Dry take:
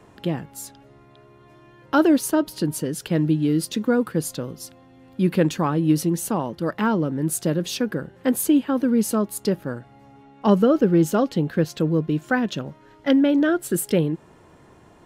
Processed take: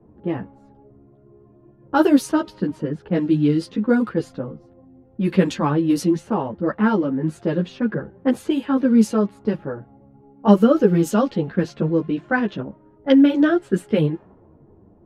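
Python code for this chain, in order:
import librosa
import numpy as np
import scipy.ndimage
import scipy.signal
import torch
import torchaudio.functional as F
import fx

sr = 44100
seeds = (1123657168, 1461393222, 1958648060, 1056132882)

y = fx.env_lowpass(x, sr, base_hz=430.0, full_db=-13.5)
y = fx.ensemble(y, sr)
y = y * librosa.db_to_amplitude(5.0)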